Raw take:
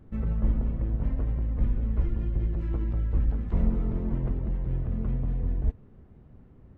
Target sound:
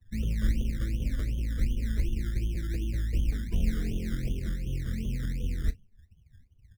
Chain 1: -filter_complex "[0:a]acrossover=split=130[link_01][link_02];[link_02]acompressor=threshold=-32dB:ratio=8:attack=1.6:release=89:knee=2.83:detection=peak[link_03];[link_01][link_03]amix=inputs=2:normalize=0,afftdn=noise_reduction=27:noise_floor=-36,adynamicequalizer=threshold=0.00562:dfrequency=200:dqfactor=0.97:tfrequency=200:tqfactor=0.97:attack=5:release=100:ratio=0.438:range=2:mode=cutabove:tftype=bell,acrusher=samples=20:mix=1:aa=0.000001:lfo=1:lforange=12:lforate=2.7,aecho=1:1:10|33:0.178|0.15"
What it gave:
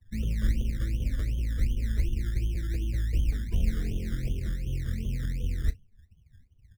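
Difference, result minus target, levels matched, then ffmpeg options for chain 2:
250 Hz band −3.0 dB
-filter_complex "[0:a]acrossover=split=130[link_01][link_02];[link_02]acompressor=threshold=-32dB:ratio=8:attack=1.6:release=89:knee=2.83:detection=peak[link_03];[link_01][link_03]amix=inputs=2:normalize=0,afftdn=noise_reduction=27:noise_floor=-36,adynamicequalizer=threshold=0.00562:dfrequency=95:dqfactor=0.97:tfrequency=95:tqfactor=0.97:attack=5:release=100:ratio=0.438:range=2:mode=cutabove:tftype=bell,acrusher=samples=20:mix=1:aa=0.000001:lfo=1:lforange=12:lforate=2.7,aecho=1:1:10|33:0.178|0.15"

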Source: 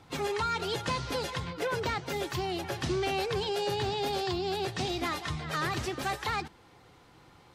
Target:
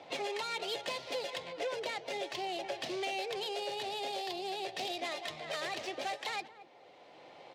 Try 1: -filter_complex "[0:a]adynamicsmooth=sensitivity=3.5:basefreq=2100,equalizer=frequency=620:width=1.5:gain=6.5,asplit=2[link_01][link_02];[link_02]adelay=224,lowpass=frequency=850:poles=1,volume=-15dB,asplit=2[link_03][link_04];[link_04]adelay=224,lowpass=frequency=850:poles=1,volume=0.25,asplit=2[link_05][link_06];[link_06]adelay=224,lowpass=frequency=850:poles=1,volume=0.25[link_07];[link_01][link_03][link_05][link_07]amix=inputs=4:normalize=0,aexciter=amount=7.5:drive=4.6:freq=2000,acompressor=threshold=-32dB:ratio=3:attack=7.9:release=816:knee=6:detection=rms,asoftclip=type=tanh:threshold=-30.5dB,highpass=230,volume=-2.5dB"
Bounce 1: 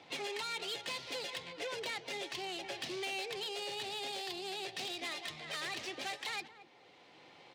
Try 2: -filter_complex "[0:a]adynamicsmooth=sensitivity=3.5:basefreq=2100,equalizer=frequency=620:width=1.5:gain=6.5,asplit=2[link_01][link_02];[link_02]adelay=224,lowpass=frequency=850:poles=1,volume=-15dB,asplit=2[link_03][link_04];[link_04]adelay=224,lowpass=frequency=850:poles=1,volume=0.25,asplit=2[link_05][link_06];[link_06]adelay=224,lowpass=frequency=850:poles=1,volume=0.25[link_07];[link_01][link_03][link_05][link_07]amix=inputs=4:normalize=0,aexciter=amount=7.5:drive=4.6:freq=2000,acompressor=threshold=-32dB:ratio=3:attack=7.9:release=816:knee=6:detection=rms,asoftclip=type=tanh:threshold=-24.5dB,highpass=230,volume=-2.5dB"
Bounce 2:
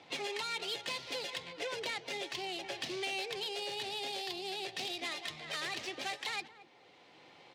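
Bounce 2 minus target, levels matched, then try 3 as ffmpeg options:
500 Hz band −4.0 dB
-filter_complex "[0:a]adynamicsmooth=sensitivity=3.5:basefreq=2100,equalizer=frequency=620:width=1.5:gain=18.5,asplit=2[link_01][link_02];[link_02]adelay=224,lowpass=frequency=850:poles=1,volume=-15dB,asplit=2[link_03][link_04];[link_04]adelay=224,lowpass=frequency=850:poles=1,volume=0.25,asplit=2[link_05][link_06];[link_06]adelay=224,lowpass=frequency=850:poles=1,volume=0.25[link_07];[link_01][link_03][link_05][link_07]amix=inputs=4:normalize=0,aexciter=amount=7.5:drive=4.6:freq=2000,acompressor=threshold=-32dB:ratio=3:attack=7.9:release=816:knee=6:detection=rms,asoftclip=type=tanh:threshold=-24.5dB,highpass=230,volume=-2.5dB"

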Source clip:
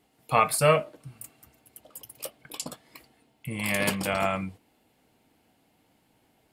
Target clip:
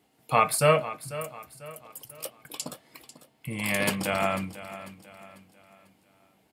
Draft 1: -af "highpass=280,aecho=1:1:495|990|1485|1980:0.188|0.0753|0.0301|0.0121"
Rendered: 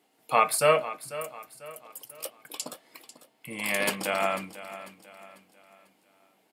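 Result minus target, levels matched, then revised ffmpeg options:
125 Hz band −10.0 dB
-af "highpass=74,aecho=1:1:495|990|1485|1980:0.188|0.0753|0.0301|0.0121"

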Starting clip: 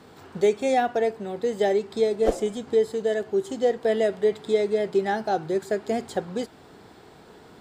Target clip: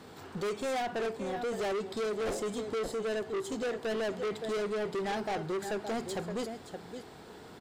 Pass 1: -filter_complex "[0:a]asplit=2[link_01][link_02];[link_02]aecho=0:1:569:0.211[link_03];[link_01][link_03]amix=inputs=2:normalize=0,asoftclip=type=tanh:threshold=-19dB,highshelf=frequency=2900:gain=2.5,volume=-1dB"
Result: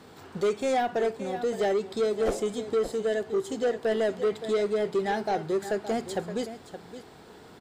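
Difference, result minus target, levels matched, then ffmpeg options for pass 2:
soft clipping: distortion −8 dB
-filter_complex "[0:a]asplit=2[link_01][link_02];[link_02]aecho=0:1:569:0.211[link_03];[link_01][link_03]amix=inputs=2:normalize=0,asoftclip=type=tanh:threshold=-29.5dB,highshelf=frequency=2900:gain=2.5,volume=-1dB"

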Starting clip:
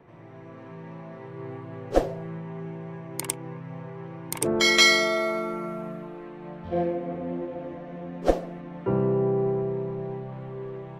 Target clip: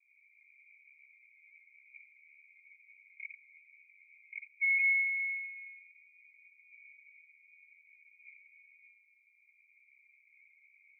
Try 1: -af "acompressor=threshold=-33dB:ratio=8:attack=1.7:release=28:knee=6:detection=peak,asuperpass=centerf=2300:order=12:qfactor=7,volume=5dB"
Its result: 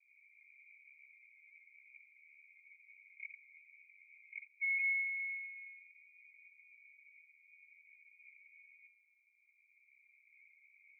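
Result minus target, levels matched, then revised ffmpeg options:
downward compressor: peak gain reduction +6 dB
-af "acompressor=threshold=-26dB:ratio=8:attack=1.7:release=28:knee=6:detection=peak,asuperpass=centerf=2300:order=12:qfactor=7,volume=5dB"

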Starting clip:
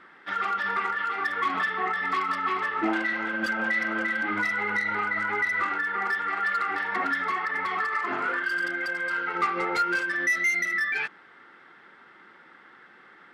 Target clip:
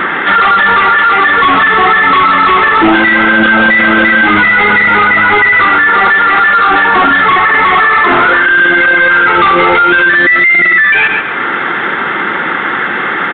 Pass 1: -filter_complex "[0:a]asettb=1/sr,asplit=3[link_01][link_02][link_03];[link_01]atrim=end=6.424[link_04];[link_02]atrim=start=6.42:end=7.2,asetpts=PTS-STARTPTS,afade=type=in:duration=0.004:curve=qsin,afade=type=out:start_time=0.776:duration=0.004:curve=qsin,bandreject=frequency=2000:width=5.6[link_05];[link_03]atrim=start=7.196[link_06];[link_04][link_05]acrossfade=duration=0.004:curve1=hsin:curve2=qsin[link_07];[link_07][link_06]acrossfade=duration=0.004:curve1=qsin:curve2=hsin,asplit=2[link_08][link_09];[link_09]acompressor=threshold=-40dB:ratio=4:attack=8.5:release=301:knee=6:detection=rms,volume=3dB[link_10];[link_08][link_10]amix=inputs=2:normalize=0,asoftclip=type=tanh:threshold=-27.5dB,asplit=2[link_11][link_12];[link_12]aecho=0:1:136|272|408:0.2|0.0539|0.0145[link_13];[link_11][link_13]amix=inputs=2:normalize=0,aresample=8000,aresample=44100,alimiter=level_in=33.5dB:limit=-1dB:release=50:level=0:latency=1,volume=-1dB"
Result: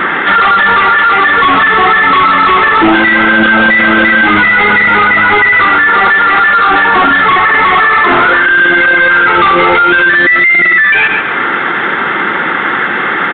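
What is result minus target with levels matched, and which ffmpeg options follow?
downward compressor: peak gain reduction −7 dB
-filter_complex "[0:a]asettb=1/sr,asplit=3[link_01][link_02][link_03];[link_01]atrim=end=6.424[link_04];[link_02]atrim=start=6.42:end=7.2,asetpts=PTS-STARTPTS,afade=type=in:duration=0.004:curve=qsin,afade=type=out:start_time=0.776:duration=0.004:curve=qsin,bandreject=frequency=2000:width=5.6[link_05];[link_03]atrim=start=7.196[link_06];[link_04][link_05]acrossfade=duration=0.004:curve1=hsin:curve2=qsin[link_07];[link_07][link_06]acrossfade=duration=0.004:curve1=qsin:curve2=hsin,asplit=2[link_08][link_09];[link_09]acompressor=threshold=-49.5dB:ratio=4:attack=8.5:release=301:knee=6:detection=rms,volume=3dB[link_10];[link_08][link_10]amix=inputs=2:normalize=0,asoftclip=type=tanh:threshold=-27.5dB,asplit=2[link_11][link_12];[link_12]aecho=0:1:136|272|408:0.2|0.0539|0.0145[link_13];[link_11][link_13]amix=inputs=2:normalize=0,aresample=8000,aresample=44100,alimiter=level_in=33.5dB:limit=-1dB:release=50:level=0:latency=1,volume=-1dB"

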